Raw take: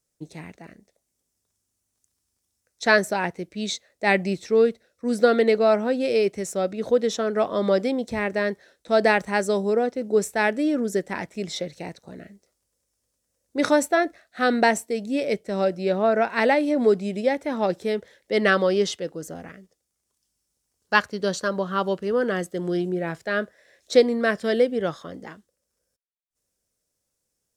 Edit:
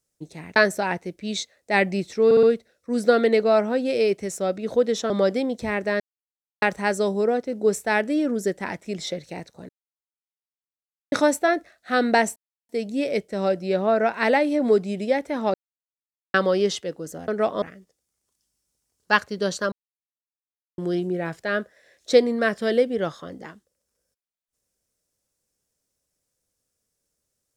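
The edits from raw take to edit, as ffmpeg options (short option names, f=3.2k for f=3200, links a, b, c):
-filter_complex "[0:a]asplit=17[a][b][c][d][e][f][g][h][i][j][k][l][m][n][o][p][q];[a]atrim=end=0.562[r];[b]atrim=start=2.888:end=4.642[s];[c]atrim=start=4.578:end=4.642[t];[d]atrim=start=4.578:end=4.642[u];[e]atrim=start=4.578:end=7.252[v];[f]atrim=start=7.588:end=8.49,asetpts=PTS-STARTPTS,afade=t=out:st=0.898:d=0.004:c=hsin[w];[g]atrim=start=8.49:end=9.11,asetpts=PTS-STARTPTS,volume=0[x];[h]atrim=start=9.11:end=12.18,asetpts=PTS-STARTPTS,afade=t=in:d=0.004:c=hsin,afade=t=out:st=3.066:d=0.004:c=hsin[y];[i]atrim=start=12.18:end=13.61,asetpts=PTS-STARTPTS,volume=0[z];[j]atrim=start=13.61:end=14.85,asetpts=PTS-STARTPTS,afade=t=in:d=0.004:c=hsin,afade=t=out:st=1.236:d=0.004:c=hsin,apad=pad_dur=0.33[aa];[k]atrim=start=14.85:end=17.7,asetpts=PTS-STARTPTS,afade=t=in:d=0.004:c=hsin,afade=t=out:st=2.846:d=0.004:c=hsin[ab];[l]atrim=start=17.7:end=18.5,asetpts=PTS-STARTPTS,volume=0[ac];[m]atrim=start=18.5:end=19.442,asetpts=PTS-STARTPTS,afade=t=in:d=0.004:c=hsin[ad];[n]atrim=start=7.248:end=7.592[ae];[o]atrim=start=19.438:end=21.54,asetpts=PTS-STARTPTS,afade=t=out:st=2.098:d=0.004:c=hsin[af];[p]atrim=start=21.54:end=22.6,asetpts=PTS-STARTPTS,volume=0[ag];[q]atrim=start=22.6,asetpts=PTS-STARTPTS,afade=t=in:d=0.004:c=hsin[ah];[r][s]acrossfade=d=0.004:c1=hsin:c2=hsin[ai];[ai][t]acrossfade=d=0.004:c1=hsin:c2=hsin[aj];[aj][u]acrossfade=d=0.004:c1=hsin:c2=hsin[ak];[ak][v]acrossfade=d=0.004:c1=hsin:c2=hsin[al];[w][x][y][z][aa][ab][ac][ad]concat=n=8:v=0:a=1[am];[al][am]acrossfade=d=0.004:c1=hsin:c2=hsin[an];[an][ae]acrossfade=d=0.004:c1=hsin:c2=hsin[ao];[af][ag][ah]concat=n=3:v=0:a=1[ap];[ao][ap]acrossfade=d=0.004:c1=hsin:c2=hsin"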